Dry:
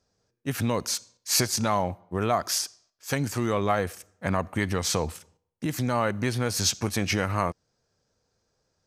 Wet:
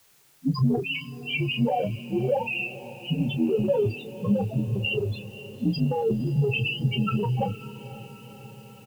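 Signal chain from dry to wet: frequency axis rescaled in octaves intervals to 77%; peaking EQ 2.7 kHz +5 dB 0.24 oct; in parallel at 0 dB: peak limiter -18.5 dBFS, peak gain reduction 9 dB; on the sum: loudest bins only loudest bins 2; transient shaper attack +7 dB, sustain +11 dB; word length cut 10-bit, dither triangular; doubling 29 ms -10.5 dB; on a send: echo that smears into a reverb 509 ms, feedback 63%, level -16 dB

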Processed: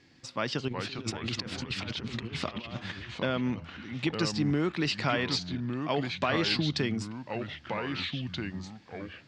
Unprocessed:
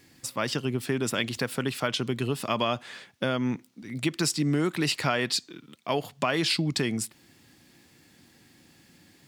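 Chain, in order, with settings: low-pass 5.6 kHz 24 dB/octave; 0.68–2.92 s: compressor with a negative ratio -34 dBFS, ratio -0.5; ever faster or slower copies 298 ms, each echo -3 st, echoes 3, each echo -6 dB; trim -2.5 dB

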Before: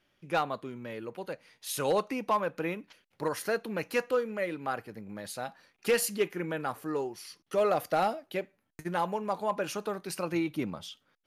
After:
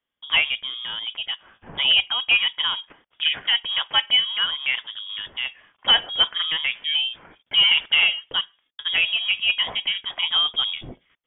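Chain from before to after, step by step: high-pass 40 Hz; gate with hold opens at -60 dBFS; frequency inversion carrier 3.5 kHz; trim +9 dB

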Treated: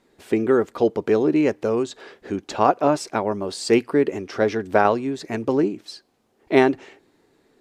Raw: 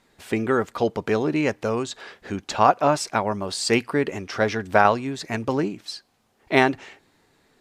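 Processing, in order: peaking EQ 360 Hz +10 dB 1.4 oct; trim -4 dB

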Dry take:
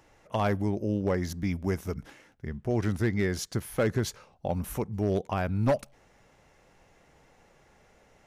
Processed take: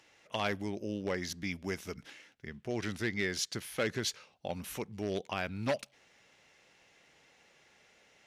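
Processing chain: frequency weighting D; trim -6.5 dB

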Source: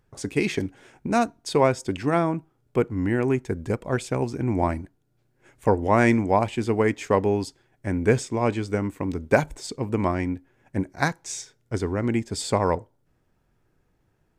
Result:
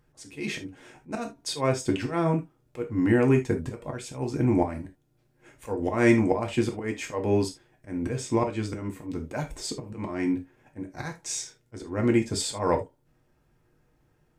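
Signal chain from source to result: slow attack 239 ms; gated-style reverb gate 100 ms falling, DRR 2.5 dB

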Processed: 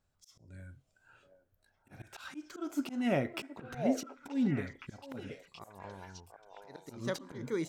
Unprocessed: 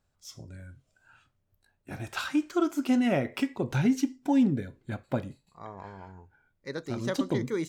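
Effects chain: slow attack 209 ms; repeats whose band climbs or falls 724 ms, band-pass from 610 Hz, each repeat 1.4 oct, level -1 dB; trim -3.5 dB

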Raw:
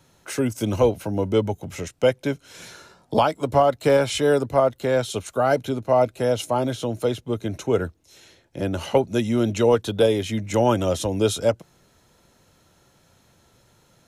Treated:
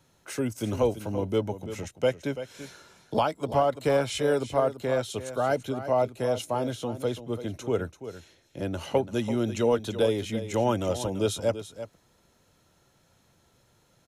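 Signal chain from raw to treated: delay 337 ms -12 dB; trim -6 dB

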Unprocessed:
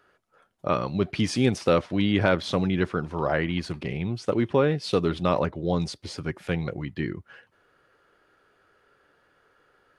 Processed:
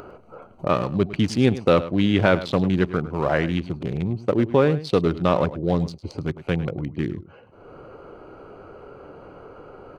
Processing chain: local Wiener filter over 25 samples; upward compressor, threshold -28 dBFS; echo from a far wall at 18 m, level -15 dB; trim +4 dB

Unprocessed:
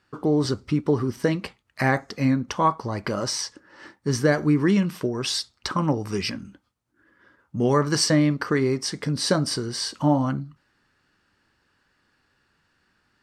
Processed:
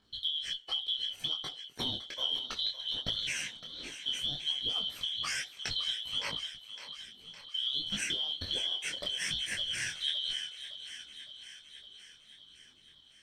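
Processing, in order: four frequency bands reordered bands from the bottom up 2413; compression 6:1, threshold -29 dBFS, peak gain reduction 14 dB; phaser 0.63 Hz, delay 2.7 ms, feedback 40%; on a send: thinning echo 561 ms, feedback 64%, high-pass 380 Hz, level -11.5 dB; on the sum: detune thickener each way 44 cents

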